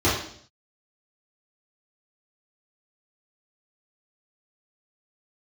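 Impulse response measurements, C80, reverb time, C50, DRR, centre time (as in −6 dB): 7.5 dB, 0.60 s, 3.5 dB, −11.0 dB, 52 ms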